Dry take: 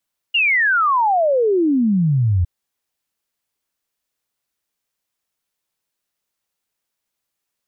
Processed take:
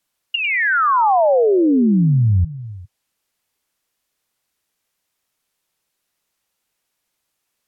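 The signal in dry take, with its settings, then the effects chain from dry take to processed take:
log sweep 2.9 kHz -> 83 Hz 2.11 s -13 dBFS
low-pass that closes with the level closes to 1.4 kHz, closed at -19 dBFS; in parallel at -0.5 dB: peak limiter -24 dBFS; on the sum: repeats whose band climbs or falls 100 ms, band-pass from 2.5 kHz, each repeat -1.4 oct, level -6.5 dB

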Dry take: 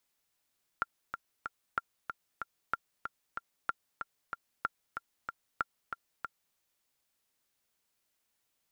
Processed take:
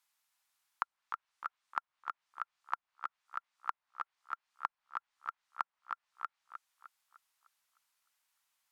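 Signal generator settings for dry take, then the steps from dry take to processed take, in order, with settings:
metronome 188 bpm, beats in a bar 3, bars 6, 1.38 kHz, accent 7 dB -16.5 dBFS
low-pass that closes with the level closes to 650 Hz, closed at -37.5 dBFS; resonant low shelf 640 Hz -13.5 dB, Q 1.5; tape echo 304 ms, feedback 44%, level -7 dB, low-pass 3.9 kHz

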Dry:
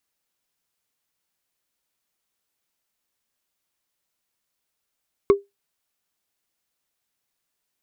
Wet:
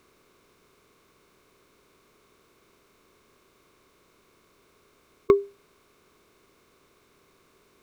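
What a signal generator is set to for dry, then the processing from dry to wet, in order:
wood hit, lowest mode 400 Hz, decay 0.18 s, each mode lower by 9 dB, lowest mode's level -7 dB
spectral levelling over time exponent 0.6; peaking EQ 1.5 kHz +2.5 dB 0.21 oct

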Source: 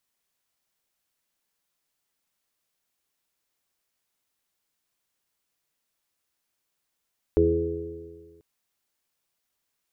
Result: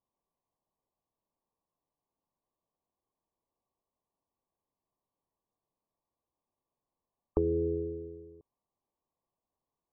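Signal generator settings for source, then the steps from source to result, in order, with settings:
stretched partials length 1.04 s, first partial 81.5 Hz, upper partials -7/-16/2.5/5.5/-9 dB, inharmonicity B 0.0024, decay 1.66 s, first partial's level -23 dB
compression, threshold -25 dBFS; brick-wall FIR low-pass 1.2 kHz

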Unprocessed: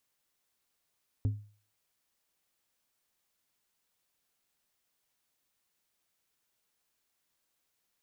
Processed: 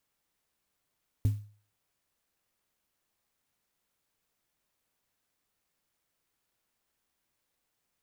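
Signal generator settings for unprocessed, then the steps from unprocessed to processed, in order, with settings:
glass hit plate, lowest mode 104 Hz, decay 0.42 s, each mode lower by 11 dB, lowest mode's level -23 dB
bass shelf 190 Hz +5 dB; sampling jitter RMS 0.065 ms

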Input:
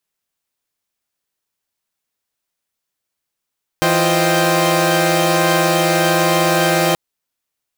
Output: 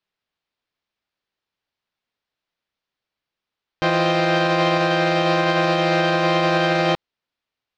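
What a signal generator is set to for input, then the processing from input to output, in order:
chord E3/F4/C5/D#5/G5 saw, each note -17 dBFS 3.13 s
low-pass 4.5 kHz 24 dB/octave; peak limiter -10 dBFS

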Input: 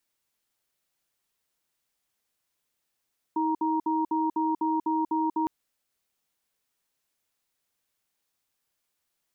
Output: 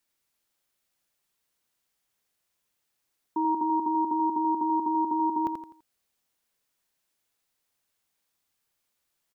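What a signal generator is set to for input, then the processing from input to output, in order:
cadence 318 Hz, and 939 Hz, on 0.19 s, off 0.06 s, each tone -26 dBFS 2.11 s
on a send: feedback delay 84 ms, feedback 36%, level -6 dB

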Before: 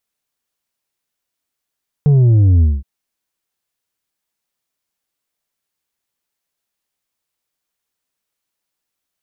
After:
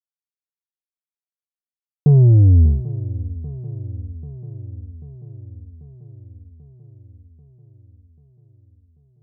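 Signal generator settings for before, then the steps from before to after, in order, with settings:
sub drop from 150 Hz, over 0.77 s, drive 5 dB, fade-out 0.21 s, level -8 dB
expander -21 dBFS; shuffle delay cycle 789 ms, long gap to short 3:1, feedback 64%, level -17 dB

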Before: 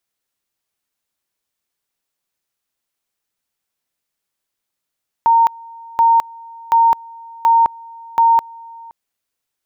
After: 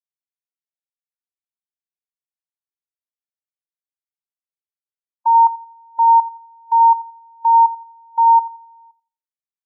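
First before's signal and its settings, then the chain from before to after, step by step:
two-level tone 920 Hz -8 dBFS, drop 25 dB, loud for 0.21 s, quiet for 0.52 s, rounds 5
on a send: thinning echo 86 ms, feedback 40%, high-pass 470 Hz, level -12.5 dB; on the sum: spectral contrast expander 1.5:1

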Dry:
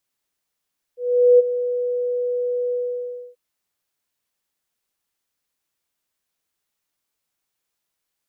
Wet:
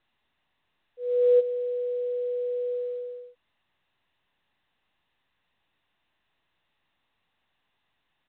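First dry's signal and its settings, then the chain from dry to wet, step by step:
ADSR sine 491 Hz, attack 421 ms, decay 23 ms, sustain -12.5 dB, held 1.76 s, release 624 ms -7.5 dBFS
comb 1.1 ms, depth 53%; µ-law 64 kbps 8 kHz

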